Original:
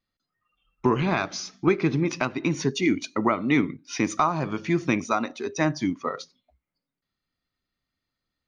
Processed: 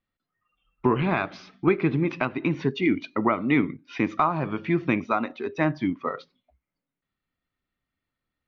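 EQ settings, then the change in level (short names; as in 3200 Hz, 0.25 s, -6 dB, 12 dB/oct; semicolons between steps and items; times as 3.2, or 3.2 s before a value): LPF 3300 Hz 24 dB/oct; 0.0 dB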